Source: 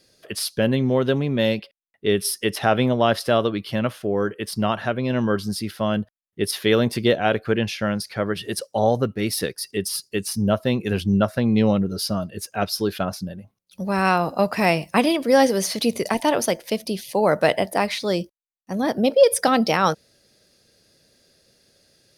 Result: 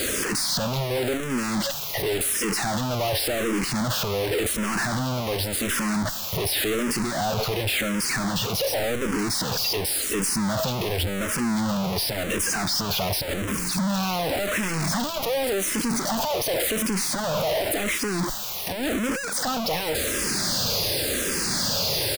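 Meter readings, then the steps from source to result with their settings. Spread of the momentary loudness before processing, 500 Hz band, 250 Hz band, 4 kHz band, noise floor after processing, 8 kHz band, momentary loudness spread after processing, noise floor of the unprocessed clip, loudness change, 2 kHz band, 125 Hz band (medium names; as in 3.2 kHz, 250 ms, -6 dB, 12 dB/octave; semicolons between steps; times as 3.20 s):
9 LU, -6.0 dB, -4.5 dB, +3.5 dB, -30 dBFS, +6.0 dB, 3 LU, -71 dBFS, -2.5 dB, -0.5 dB, -3.0 dB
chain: one-bit comparator; on a send: delay 555 ms -24 dB; on the sum: barber-pole phaser -0.9 Hz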